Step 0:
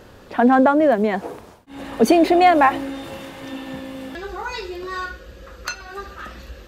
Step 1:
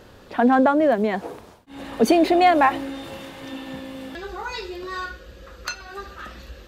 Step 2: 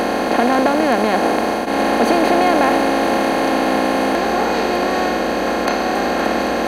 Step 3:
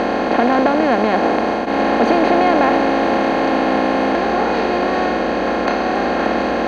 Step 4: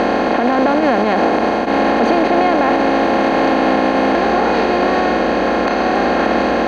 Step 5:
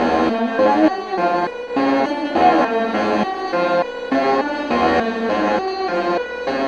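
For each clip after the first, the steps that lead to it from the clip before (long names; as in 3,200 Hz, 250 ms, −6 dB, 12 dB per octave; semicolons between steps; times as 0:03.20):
parametric band 3,800 Hz +2.5 dB; level −2.5 dB
compressor on every frequency bin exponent 0.2; level −4.5 dB
high-frequency loss of the air 150 metres; level +1 dB
brickwall limiter −8 dBFS, peak gain reduction 6.5 dB; level +3 dB
step-sequenced resonator 3.4 Hz 81–490 Hz; level +8 dB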